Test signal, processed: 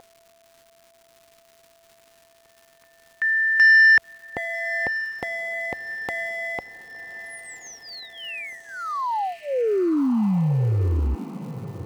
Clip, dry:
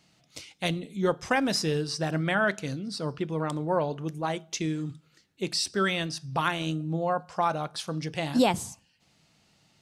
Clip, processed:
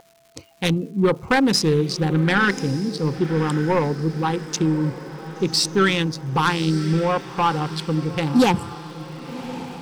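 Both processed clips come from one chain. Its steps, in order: local Wiener filter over 25 samples; spectral noise reduction 14 dB; high-pass 56 Hz; whistle 670 Hz -44 dBFS; in parallel at -11 dB: sine folder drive 9 dB, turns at -11.5 dBFS; on the sum: crackle 330 per s -46 dBFS; Butterworth band-stop 640 Hz, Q 3; echo that smears into a reverb 1116 ms, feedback 50%, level -13.5 dB; trim +4 dB

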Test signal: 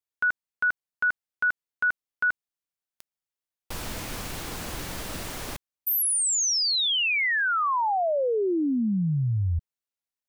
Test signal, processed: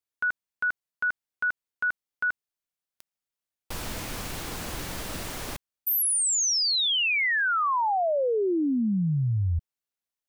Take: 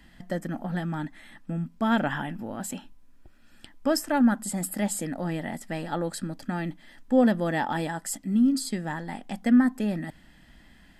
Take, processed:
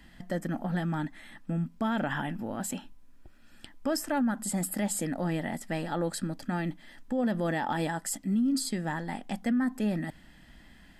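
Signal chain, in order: peak limiter -21.5 dBFS

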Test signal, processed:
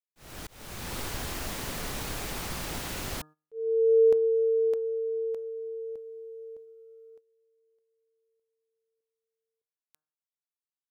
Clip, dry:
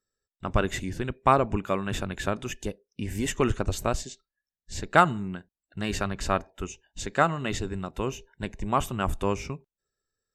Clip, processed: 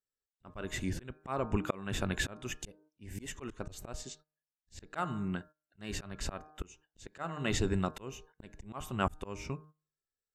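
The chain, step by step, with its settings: de-hum 153.5 Hz, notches 11; gate -51 dBFS, range -16 dB; slow attack 507 ms; trim +2 dB

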